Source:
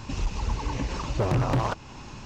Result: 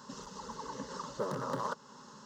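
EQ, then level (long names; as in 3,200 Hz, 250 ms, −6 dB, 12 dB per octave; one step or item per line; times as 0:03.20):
high-pass filter 230 Hz 12 dB per octave
phaser with its sweep stopped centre 480 Hz, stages 8
−4.5 dB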